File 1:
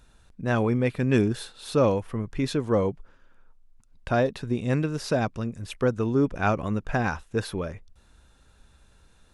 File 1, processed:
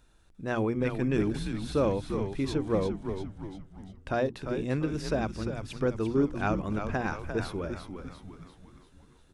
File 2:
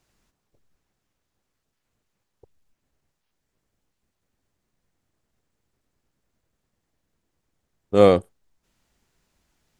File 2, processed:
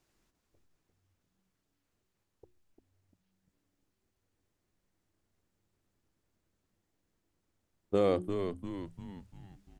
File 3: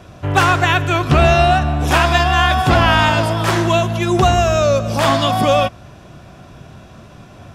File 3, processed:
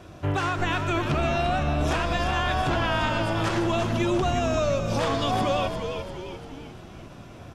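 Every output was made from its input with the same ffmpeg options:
-filter_complex "[0:a]bandreject=f=60:t=h:w=6,bandreject=f=120:t=h:w=6,bandreject=f=180:t=h:w=6,bandreject=f=240:t=h:w=6,bandreject=f=300:t=h:w=6,bandreject=f=360:t=h:w=6,acrossover=split=9200[s0][s1];[s1]acompressor=threshold=0.00251:ratio=4:attack=1:release=60[s2];[s0][s2]amix=inputs=2:normalize=0,equalizer=f=330:w=3.5:g=6,alimiter=limit=0.282:level=0:latency=1:release=206,asplit=7[s3][s4][s5][s6][s7][s8][s9];[s4]adelay=347,afreqshift=-95,volume=0.447[s10];[s5]adelay=694,afreqshift=-190,volume=0.229[s11];[s6]adelay=1041,afreqshift=-285,volume=0.116[s12];[s7]adelay=1388,afreqshift=-380,volume=0.0596[s13];[s8]adelay=1735,afreqshift=-475,volume=0.0302[s14];[s9]adelay=2082,afreqshift=-570,volume=0.0155[s15];[s3][s10][s11][s12][s13][s14][s15]amix=inputs=7:normalize=0,volume=0.531"

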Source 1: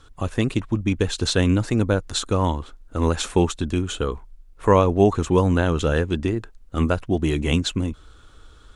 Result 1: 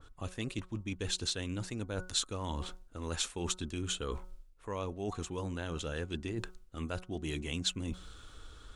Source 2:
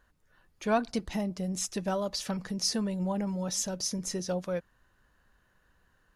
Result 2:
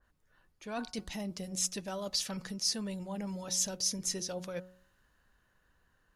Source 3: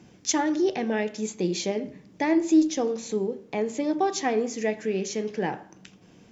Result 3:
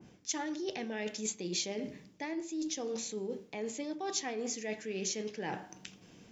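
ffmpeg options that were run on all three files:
-af "bandreject=f=183.7:t=h:w=4,bandreject=f=367.4:t=h:w=4,bandreject=f=551.1:t=h:w=4,bandreject=f=734.8:t=h:w=4,bandreject=f=918.5:t=h:w=4,bandreject=f=1102.2:t=h:w=4,bandreject=f=1285.9:t=h:w=4,bandreject=f=1469.6:t=h:w=4,areverse,acompressor=threshold=0.0282:ratio=12,areverse,adynamicequalizer=threshold=0.00178:dfrequency=2000:dqfactor=0.7:tfrequency=2000:tqfactor=0.7:attack=5:release=100:ratio=0.375:range=4:mode=boostabove:tftype=highshelf,volume=0.668"

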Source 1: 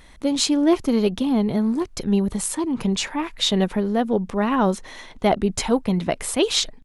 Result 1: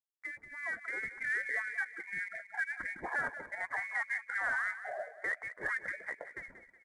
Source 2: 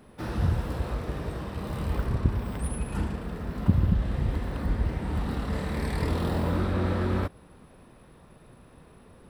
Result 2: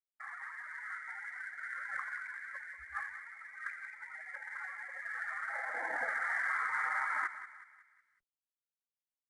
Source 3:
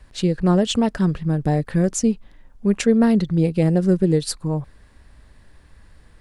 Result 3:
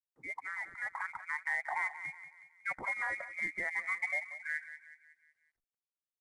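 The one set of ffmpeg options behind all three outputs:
-filter_complex "[0:a]afftdn=nr=29:nf=-36,agate=range=0.0158:threshold=0.00708:ratio=16:detection=peak,highpass=f=730:w=0.5412,highpass=f=730:w=1.3066,acompressor=threshold=0.0282:ratio=16,alimiter=level_in=2.37:limit=0.0631:level=0:latency=1:release=26,volume=0.422,dynaudnorm=f=110:g=17:m=2,asplit=2[s0][s1];[s1]adelay=184,lowpass=f=1600:p=1,volume=0.282,asplit=2[s2][s3];[s3]adelay=184,lowpass=f=1600:p=1,volume=0.51,asplit=2[s4][s5];[s5]adelay=184,lowpass=f=1600:p=1,volume=0.51,asplit=2[s6][s7];[s7]adelay=184,lowpass=f=1600:p=1,volume=0.51,asplit=2[s8][s9];[s9]adelay=184,lowpass=f=1600:p=1,volume=0.51[s10];[s2][s4][s6][s8][s10]amix=inputs=5:normalize=0[s11];[s0][s11]amix=inputs=2:normalize=0,lowpass=f=2200:t=q:w=0.5098,lowpass=f=2200:t=q:w=0.6013,lowpass=f=2200:t=q:w=0.9,lowpass=f=2200:t=q:w=2.563,afreqshift=-2600" -ar 22050 -c:a adpcm_ima_wav

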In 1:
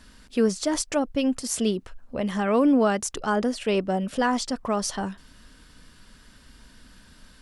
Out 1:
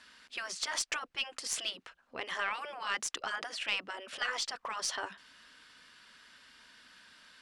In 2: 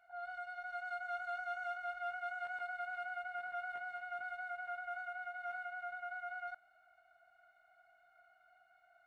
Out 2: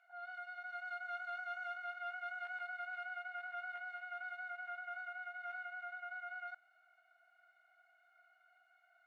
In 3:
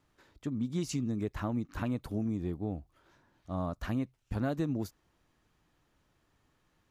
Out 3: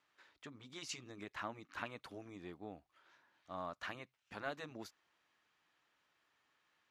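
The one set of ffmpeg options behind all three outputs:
-af "afftfilt=real='re*lt(hypot(re,im),0.224)':imag='im*lt(hypot(re,im),0.224)':win_size=1024:overlap=0.75,bandpass=f=2300:t=q:w=0.71:csg=0,aeval=exprs='0.141*(cos(1*acos(clip(val(0)/0.141,-1,1)))-cos(1*PI/2))+0.0224*(cos(2*acos(clip(val(0)/0.141,-1,1)))-cos(2*PI/2))+0.002*(cos(4*acos(clip(val(0)/0.141,-1,1)))-cos(4*PI/2))+0.00224*(cos(7*acos(clip(val(0)/0.141,-1,1)))-cos(7*PI/2))':c=same,volume=1.26"

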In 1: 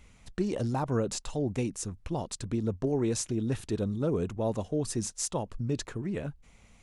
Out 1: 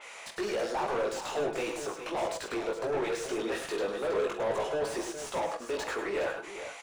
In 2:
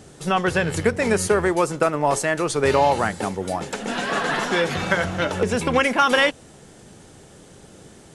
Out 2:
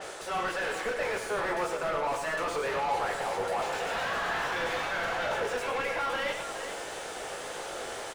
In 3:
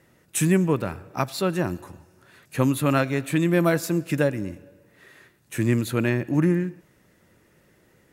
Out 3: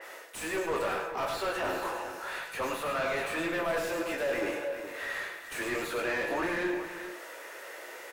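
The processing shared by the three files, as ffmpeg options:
-filter_complex "[0:a]highpass=f=450:w=0.5412,highpass=f=450:w=1.3066,areverse,acompressor=threshold=0.0178:ratio=6,areverse,flanger=delay=18:depth=2.3:speed=1.7,crystalizer=i=1.5:c=0,asplit=2[s0][s1];[s1]highpass=f=720:p=1,volume=44.7,asoftclip=type=tanh:threshold=0.0891[s2];[s0][s2]amix=inputs=2:normalize=0,lowpass=f=1500:p=1,volume=0.501,asplit=2[s3][s4];[s4]adelay=45,volume=0.266[s5];[s3][s5]amix=inputs=2:normalize=0,asplit=2[s6][s7];[s7]aecho=0:1:101|107|415:0.335|0.316|0.299[s8];[s6][s8]amix=inputs=2:normalize=0,adynamicequalizer=threshold=0.00562:dfrequency=4300:dqfactor=0.7:tfrequency=4300:tqfactor=0.7:attack=5:release=100:ratio=0.375:range=2:mode=cutabove:tftype=highshelf,volume=0.841"

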